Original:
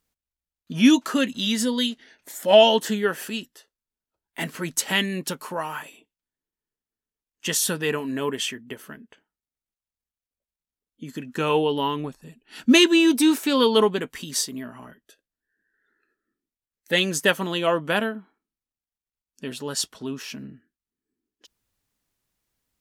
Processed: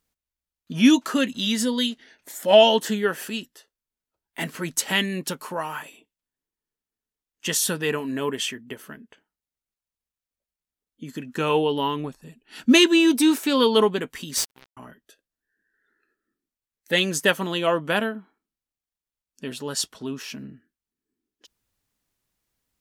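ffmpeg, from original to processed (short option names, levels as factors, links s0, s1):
-filter_complex "[0:a]asettb=1/sr,asplit=3[s0][s1][s2];[s0]atrim=end=14.374[s3];[s1]atrim=start=14.37:end=14.77,asetpts=PTS-STARTPTS,afade=t=in:d=0.004:c=qsin,afade=t=out:st=0.396:d=0.004:c=qsin,acrusher=bits=3:mix=0:aa=0.5[s4];[s2]atrim=start=14.766[s5];[s3][s4]acrossfade=d=0.004:c1=hsin:c2=qsin[s6];[s6][s5]acrossfade=d=0.004:c1=qsin:c2=hsin"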